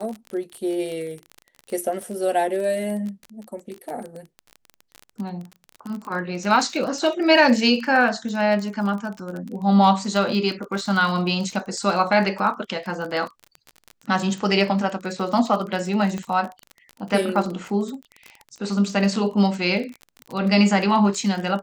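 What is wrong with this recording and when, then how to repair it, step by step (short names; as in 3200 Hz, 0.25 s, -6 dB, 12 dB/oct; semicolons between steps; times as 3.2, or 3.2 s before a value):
crackle 27/s -28 dBFS
16.18 pop -17 dBFS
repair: de-click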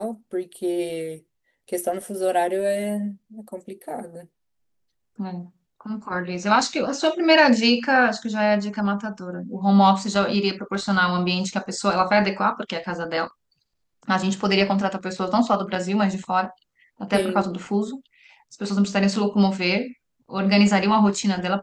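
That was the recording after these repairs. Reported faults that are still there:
none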